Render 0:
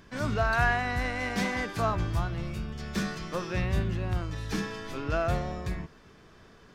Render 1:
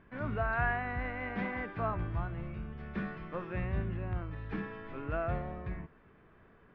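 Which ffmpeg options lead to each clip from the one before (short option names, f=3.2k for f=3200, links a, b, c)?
-af "lowpass=f=2.4k:w=0.5412,lowpass=f=2.4k:w=1.3066,volume=-6dB"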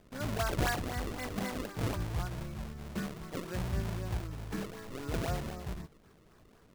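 -af "acrusher=samples=32:mix=1:aa=0.000001:lfo=1:lforange=51.2:lforate=3.9"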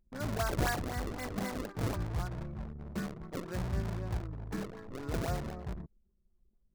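-af "anlmdn=0.0398,equalizer=f=2.9k:t=o:w=0.81:g=-4"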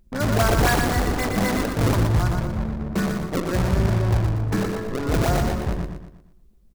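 -filter_complex "[0:a]asplit=2[a][b];[b]aeval=exprs='0.112*sin(PI/2*2.51*val(0)/0.112)':c=same,volume=-4dB[c];[a][c]amix=inputs=2:normalize=0,aecho=1:1:119|238|357|476|595:0.562|0.231|0.0945|0.0388|0.0159,volume=4dB"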